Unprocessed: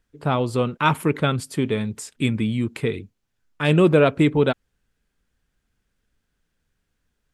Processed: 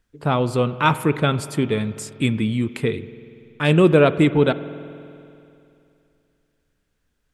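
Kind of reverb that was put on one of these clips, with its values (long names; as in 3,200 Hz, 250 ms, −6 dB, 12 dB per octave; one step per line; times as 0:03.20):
spring reverb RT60 2.7 s, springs 48 ms, chirp 55 ms, DRR 14.5 dB
level +1.5 dB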